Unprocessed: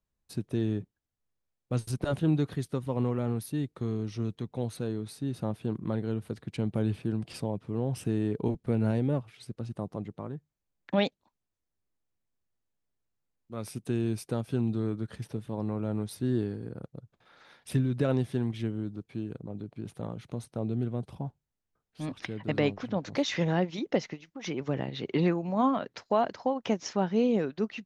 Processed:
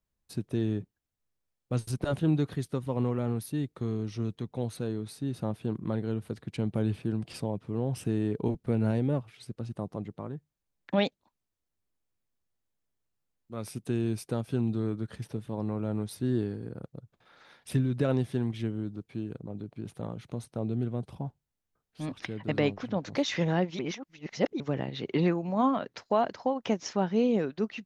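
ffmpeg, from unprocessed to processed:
-filter_complex "[0:a]asplit=3[s0][s1][s2];[s0]atrim=end=23.792[s3];[s1]atrim=start=23.788:end=24.602,asetpts=PTS-STARTPTS,areverse[s4];[s2]atrim=start=24.598[s5];[s3][s4]acrossfade=d=0.004:c1=hsin:c2=hsin[s6];[s6][s5]acrossfade=d=0.004:c1=hsin:c2=hsin"

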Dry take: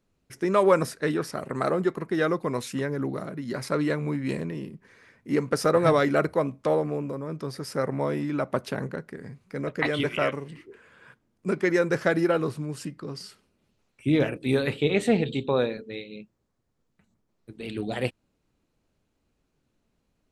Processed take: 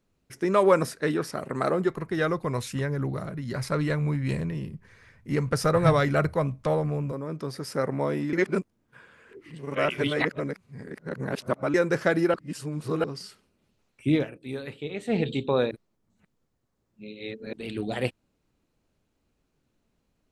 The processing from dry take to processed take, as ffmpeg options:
-filter_complex "[0:a]asplit=3[s0][s1][s2];[s0]afade=t=out:st=1.87:d=0.02[s3];[s1]asubboost=boost=8.5:cutoff=100,afade=t=in:st=1.87:d=0.02,afade=t=out:st=7.11:d=0.02[s4];[s2]afade=t=in:st=7.11:d=0.02[s5];[s3][s4][s5]amix=inputs=3:normalize=0,asplit=9[s6][s7][s8][s9][s10][s11][s12][s13][s14];[s6]atrim=end=8.332[s15];[s7]atrim=start=8.328:end=11.742,asetpts=PTS-STARTPTS,areverse[s16];[s8]atrim=start=11.738:end=12.342[s17];[s9]atrim=start=12.338:end=13.042,asetpts=PTS-STARTPTS,areverse[s18];[s10]atrim=start=13.038:end=14.26,asetpts=PTS-STARTPTS,afade=t=out:st=1.102:d=0.12:silence=0.281838[s19];[s11]atrim=start=14.26:end=15.07,asetpts=PTS-STARTPTS,volume=0.282[s20];[s12]atrim=start=15.07:end=15.712,asetpts=PTS-STARTPTS,afade=t=in:d=0.12:silence=0.281838[s21];[s13]atrim=start=15.708:end=17.532,asetpts=PTS-STARTPTS,areverse[s22];[s14]atrim=start=17.528[s23];[s15][s16]acrossfade=d=0.004:c1=hsin:c2=hsin[s24];[s24][s17]acrossfade=d=0.004:c1=hsin:c2=hsin[s25];[s25][s18]acrossfade=d=0.004:c1=hsin:c2=hsin[s26];[s19][s20][s21]concat=n=3:v=0:a=1[s27];[s26][s27]acrossfade=d=0.004:c1=hsin:c2=hsin[s28];[s28][s22]acrossfade=d=0.004:c1=hsin:c2=hsin[s29];[s29][s23]acrossfade=d=0.004:c1=hsin:c2=hsin"

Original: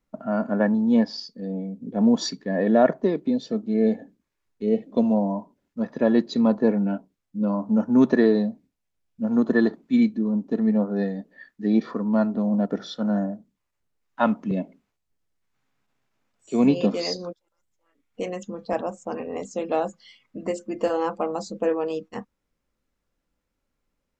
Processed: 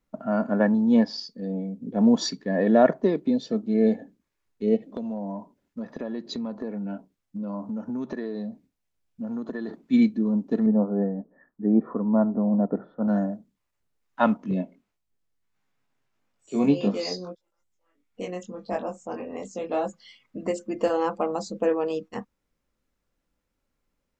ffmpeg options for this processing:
-filter_complex "[0:a]asplit=3[s0][s1][s2];[s0]afade=t=out:st=4.76:d=0.02[s3];[s1]acompressor=threshold=0.0355:ratio=6:attack=3.2:release=140:knee=1:detection=peak,afade=t=in:st=4.76:d=0.02,afade=t=out:st=9.68:d=0.02[s4];[s2]afade=t=in:st=9.68:d=0.02[s5];[s3][s4][s5]amix=inputs=3:normalize=0,asettb=1/sr,asplit=3[s6][s7][s8];[s6]atrim=end=10.664[s9];[s7]atrim=start=10.66:end=13.08,asetpts=PTS-STARTPTS,afade=t=in:d=0.004:c=qsin,afade=t=out:st=2.416:d=0.004:c=qsin,lowpass=f=1200:w=0.5412,lowpass=f=1200:w=1.3066[s10];[s8]atrim=start=13.076[s11];[s9][s10]acrossfade=d=0.004:c1=hsin:c2=qsin[s12];[s12][s11]acrossfade=d=0.004:c1=qsin:c2=hsin,asettb=1/sr,asplit=3[s13][s14][s15];[s13]atrim=end=14.374[s16];[s14]atrim=start=14.37:end=19.86,asetpts=PTS-STARTPTS,afade=t=in:d=0.004:c=qsin,afade=t=out:st=5.486:d=0.004:c=qsin,flanger=delay=20:depth=2.3:speed=1.6[s17];[s15]atrim=start=19.856[s18];[s16][s17]acrossfade=d=0.004:c1=hsin:c2=qsin[s19];[s19][s18]acrossfade=d=0.004:c1=qsin:c2=hsin"

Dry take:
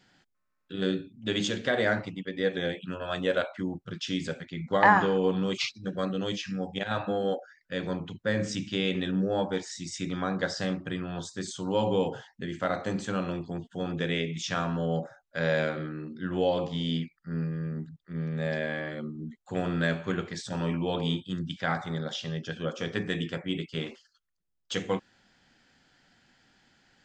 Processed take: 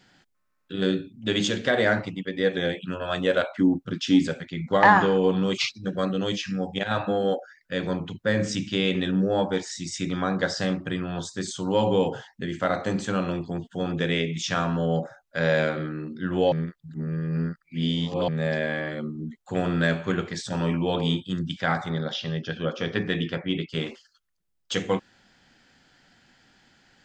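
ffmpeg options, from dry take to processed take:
-filter_complex "[0:a]asettb=1/sr,asplit=3[s0][s1][s2];[s0]atrim=end=3.594[s3];[s1]atrim=start=3.59:end=4.27,asetpts=PTS-STARTPTS,afade=t=in:d=0.004:c=qsin,afade=t=out:st=0.676:d=0.004:c=qsin,equalizer=f=270:t=o:w=0.56:g=11[s4];[s2]atrim=start=4.266[s5];[s3][s4]acrossfade=d=0.004:c1=hsin:c2=qsin[s6];[s6][s5]acrossfade=d=0.004:c1=qsin:c2=hsin,asettb=1/sr,asplit=3[s7][s8][s9];[s7]atrim=end=21.894[s10];[s8]atrim=start=21.89:end=23.7,asetpts=PTS-STARTPTS,afade=t=in:d=0.004:c=qsin,afade=t=out:st=1.806:d=0.004:c=qsin,lowpass=f=5300:w=0.5412,lowpass=f=5300:w=1.3066[s11];[s9]atrim=start=23.696[s12];[s10][s11]acrossfade=d=0.004:c1=hsin:c2=qsin[s13];[s13][s12]acrossfade=d=0.004:c1=qsin:c2=hsin,asplit=3[s14][s15][s16];[s14]atrim=end=16.522[s17];[s15]atrim=start=16.518:end=18.282,asetpts=PTS-STARTPTS,areverse[s18];[s16]atrim=start=18.278[s19];[s17][s18]acrossfade=d=0.004:c1=hsin:c2=hsin[s20];[s20][s19]acrossfade=d=0.004:c1=hsin:c2=hsin,acontrast=65,volume=0.794"

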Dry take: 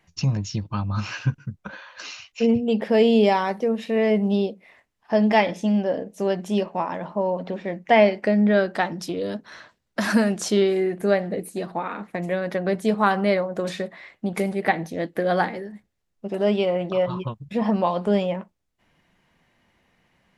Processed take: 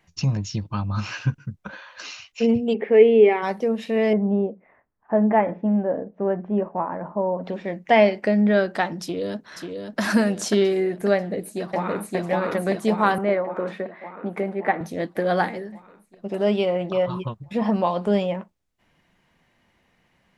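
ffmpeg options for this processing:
-filter_complex "[0:a]asplit=3[s0][s1][s2];[s0]afade=t=out:st=2.73:d=0.02[s3];[s1]highpass=180,equalizer=f=190:t=q:w=4:g=-10,equalizer=f=420:t=q:w=4:g=9,equalizer=f=610:t=q:w=4:g=-9,equalizer=f=990:t=q:w=4:g=-8,equalizer=f=1500:t=q:w=4:g=-5,equalizer=f=2200:t=q:w=4:g=8,lowpass=f=2400:w=0.5412,lowpass=f=2400:w=1.3066,afade=t=in:st=2.73:d=0.02,afade=t=out:st=3.42:d=0.02[s4];[s2]afade=t=in:st=3.42:d=0.02[s5];[s3][s4][s5]amix=inputs=3:normalize=0,asettb=1/sr,asplit=3[s6][s7][s8];[s6]atrim=end=4.134[s9];[s7]atrim=start=4.13:end=7.44,asetpts=PTS-STARTPTS,afade=t=in:d=0.004:c=qsin,afade=t=out:st=3.306:d=0.004:c=qsin,lowpass=f=1600:w=0.5412,lowpass=f=1600:w=1.3066[s10];[s8]atrim=start=7.436[s11];[s9][s10]acrossfade=d=0.004:c1=hsin:c2=qsin[s12];[s12][s11]acrossfade=d=0.004:c1=qsin:c2=hsin,asplit=2[s13][s14];[s14]afade=t=in:st=9.02:d=0.01,afade=t=out:st=10:d=0.01,aecho=0:1:540|1080|1620|2160|2700|3240:0.530884|0.265442|0.132721|0.0663606|0.0331803|0.0165901[s15];[s13][s15]amix=inputs=2:normalize=0,asplit=2[s16][s17];[s17]afade=t=in:st=11.16:d=0.01,afade=t=out:st=12.15:d=0.01,aecho=0:1:570|1140|1710|2280|2850|3420|3990|4560|5130|5700|6270:1|0.65|0.4225|0.274625|0.178506|0.116029|0.0754189|0.0490223|0.0318645|0.0207119|0.0134627[s18];[s16][s18]amix=inputs=2:normalize=0,asettb=1/sr,asplit=3[s19][s20][s21];[s19]atrim=end=13.184[s22];[s20]atrim=start=13.18:end=14.81,asetpts=PTS-STARTPTS,afade=t=in:d=0.004:c=qsin,afade=t=out:st=1.626:d=0.004:c=qsin,acrossover=split=200 2400:gain=0.251 1 0.0891[s23][s24][s25];[s23][s24][s25]amix=inputs=3:normalize=0[s26];[s21]atrim=start=14.806[s27];[s22][s26]acrossfade=d=0.004:c1=hsin:c2=qsin[s28];[s28][s27]acrossfade=d=0.004:c1=qsin:c2=hsin"

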